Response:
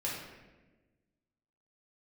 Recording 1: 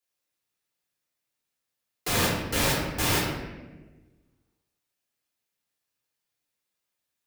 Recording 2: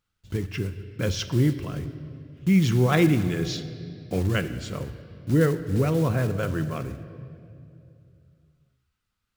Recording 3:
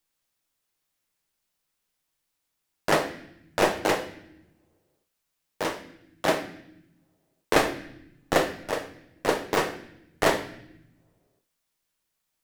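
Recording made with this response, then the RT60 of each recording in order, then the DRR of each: 1; 1.2 s, 2.4 s, not exponential; -6.0, 10.5, 6.5 dB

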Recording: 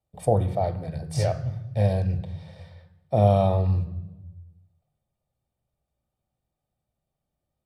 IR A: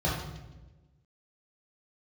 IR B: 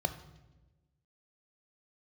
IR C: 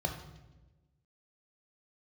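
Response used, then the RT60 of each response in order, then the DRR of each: B; 1.1, 1.1, 1.1 s; -5.0, 10.0, 4.5 dB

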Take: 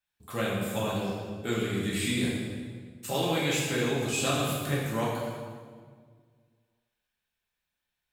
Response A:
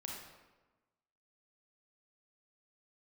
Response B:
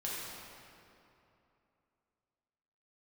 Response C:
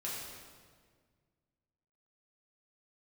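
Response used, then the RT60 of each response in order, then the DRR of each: C; 1.2, 2.9, 1.7 s; -2.0, -7.0, -7.0 dB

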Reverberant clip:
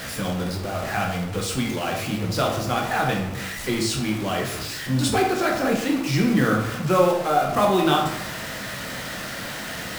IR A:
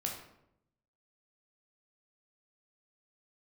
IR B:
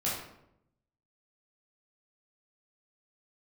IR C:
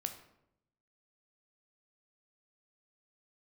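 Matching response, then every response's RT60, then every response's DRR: A; 0.80, 0.80, 0.80 s; -0.5, -7.5, 6.0 dB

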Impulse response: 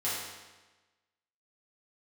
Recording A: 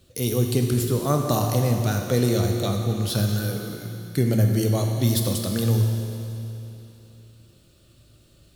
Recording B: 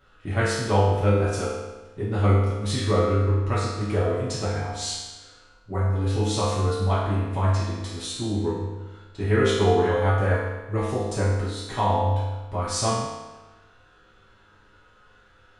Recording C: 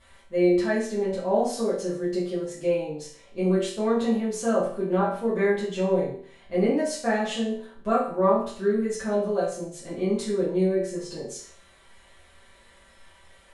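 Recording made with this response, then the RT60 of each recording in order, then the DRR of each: B; 3.0, 1.2, 0.50 s; 2.5, -10.0, -10.0 dB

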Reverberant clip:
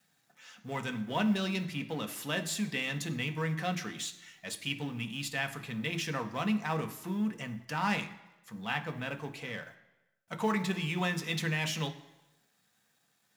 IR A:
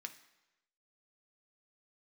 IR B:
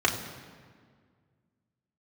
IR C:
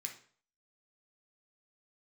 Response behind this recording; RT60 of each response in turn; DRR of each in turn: A; 1.0, 1.8, 0.50 s; 5.5, -2.0, 2.0 dB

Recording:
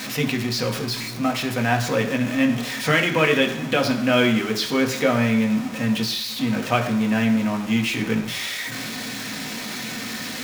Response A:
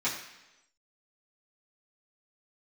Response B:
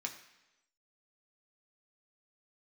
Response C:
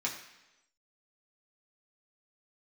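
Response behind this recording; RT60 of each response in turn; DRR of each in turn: B; 1.0, 1.0, 1.0 s; -10.5, 1.5, -4.0 dB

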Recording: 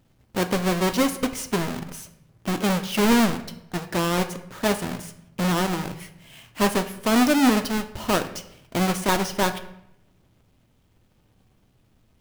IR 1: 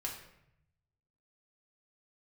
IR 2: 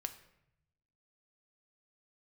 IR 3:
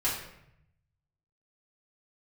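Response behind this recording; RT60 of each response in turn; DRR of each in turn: 2; 0.75, 0.80, 0.75 s; -2.0, 7.5, -9.0 dB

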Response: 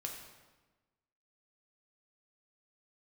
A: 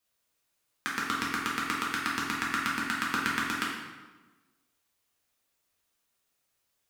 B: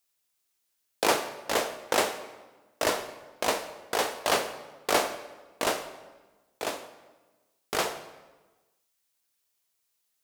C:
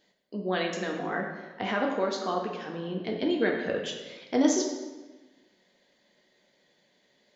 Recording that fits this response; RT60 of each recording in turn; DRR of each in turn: C; 1.2, 1.2, 1.2 s; -6.0, 8.0, 0.0 dB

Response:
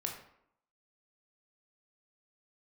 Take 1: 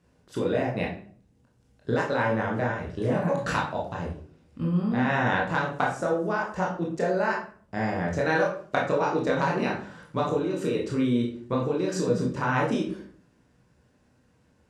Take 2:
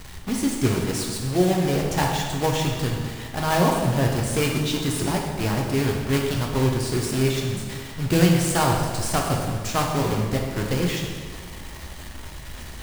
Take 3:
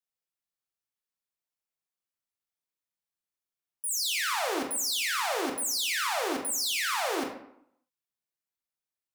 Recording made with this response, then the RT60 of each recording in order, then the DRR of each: 3; 0.50, 1.7, 0.70 s; -3.0, -0.5, 1.0 dB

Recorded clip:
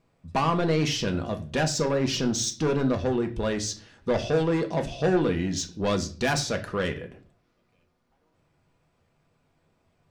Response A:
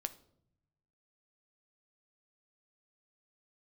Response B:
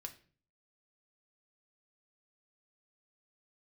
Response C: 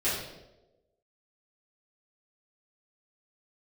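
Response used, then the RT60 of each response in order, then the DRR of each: B; 0.70, 0.45, 1.1 s; 10.0, 4.0, -12.5 dB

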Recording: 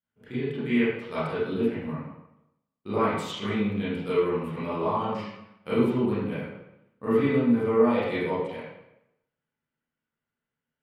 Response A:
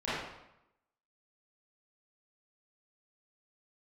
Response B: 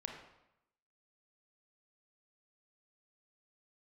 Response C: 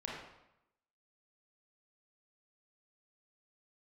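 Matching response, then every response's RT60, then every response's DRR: A; 0.85, 0.85, 0.85 s; -13.0, 1.5, -4.5 dB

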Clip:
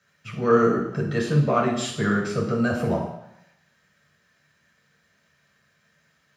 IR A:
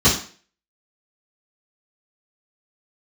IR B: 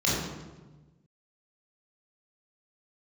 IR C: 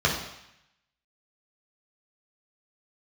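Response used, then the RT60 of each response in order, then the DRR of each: C; 0.40, 1.2, 0.80 s; -11.0, -7.0, -4.5 dB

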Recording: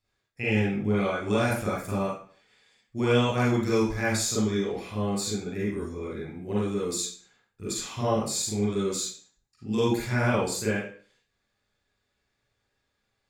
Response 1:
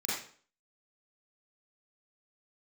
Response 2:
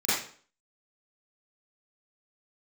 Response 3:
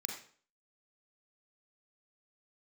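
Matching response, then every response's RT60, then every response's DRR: 1; 0.45, 0.45, 0.45 s; -8.5, -14.0, 0.5 dB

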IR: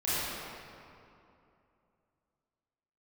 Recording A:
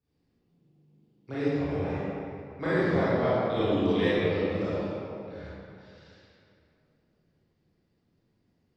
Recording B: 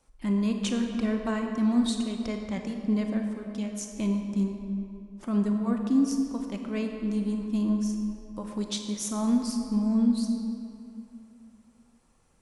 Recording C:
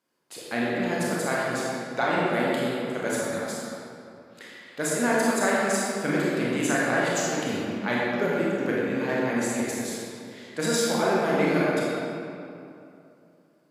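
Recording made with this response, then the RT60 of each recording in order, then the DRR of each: A; 2.7, 2.7, 2.7 s; -12.5, 3.5, -6.5 dB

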